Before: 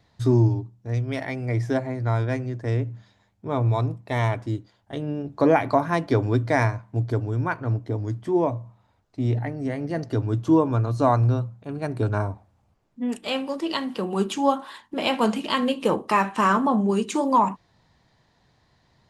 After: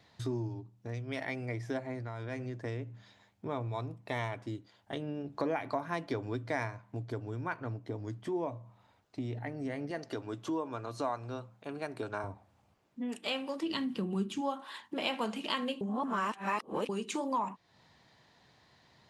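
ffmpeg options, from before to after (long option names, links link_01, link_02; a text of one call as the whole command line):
ffmpeg -i in.wav -filter_complex "[0:a]asettb=1/sr,asplit=3[link_01][link_02][link_03];[link_01]atrim=end=1.954[link_04];[link_02]atrim=start=1.95:end=2.41,asetpts=PTS-STARTPTS,afade=type=in:duration=0.004:curve=qsin,afade=type=out:start_time=0.456:duration=0.004:curve=qsin,acompressor=threshold=-26dB:ratio=6:attack=3.2:release=140:knee=1:detection=peak[link_05];[link_03]atrim=start=2.406[link_06];[link_04][link_05]acrossfade=duration=0.004:curve1=hsin:curve2=qsin[link_07];[link_07][link_06]acrossfade=duration=0.004:curve1=qsin:curve2=hsin,asettb=1/sr,asplit=3[link_08][link_09][link_10];[link_08]atrim=end=9.914[link_11];[link_09]atrim=start=9.91:end=12.24,asetpts=PTS-STARTPTS,afade=type=in:duration=0.004:curve=qsin,afade=type=out:start_time=2.326:duration=0.004:curve=qsin,highpass=frequency=410:poles=1[link_12];[link_10]atrim=start=12.236[link_13];[link_11][link_12]acrossfade=duration=0.004:curve1=hsin:curve2=qsin[link_14];[link_14][link_13]acrossfade=duration=0.004:curve1=qsin:curve2=hsin,asplit=3[link_15][link_16][link_17];[link_15]afade=type=out:start_time=13.62:duration=0.02[link_18];[link_16]asubboost=boost=7:cutoff=230,afade=type=in:start_time=13.62:duration=0.02,afade=type=out:start_time=14.4:duration=0.02[link_19];[link_17]afade=type=in:start_time=14.4:duration=0.02[link_20];[link_18][link_19][link_20]amix=inputs=3:normalize=0,asplit=3[link_21][link_22][link_23];[link_21]atrim=end=15.812[link_24];[link_22]atrim=start=15.808:end=16.892,asetpts=PTS-STARTPTS,areverse[link_25];[link_23]atrim=start=16.888[link_26];[link_24][link_25]acrossfade=duration=0.004:curve1=hsin:curve2=hsin[link_27];[link_27][link_26]acrossfade=duration=0.004:curve1=hsin:curve2=hsin,acompressor=threshold=-37dB:ratio=2.5,highpass=frequency=170:poles=1,equalizer=frequency=2800:width_type=o:width=1.4:gain=3.5" out.wav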